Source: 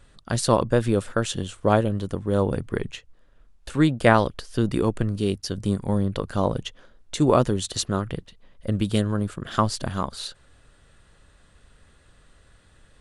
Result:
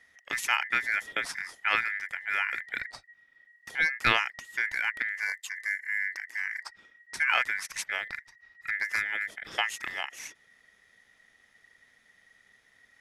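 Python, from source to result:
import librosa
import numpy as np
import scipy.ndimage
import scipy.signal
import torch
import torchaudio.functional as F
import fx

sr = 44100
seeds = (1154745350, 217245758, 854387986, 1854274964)

y = fx.spec_box(x, sr, start_s=5.27, length_s=1.43, low_hz=400.0, high_hz=2200.0, gain_db=-20)
y = y * np.sin(2.0 * np.pi * 1900.0 * np.arange(len(y)) / sr)
y = F.gain(torch.from_numpy(y), -5.0).numpy()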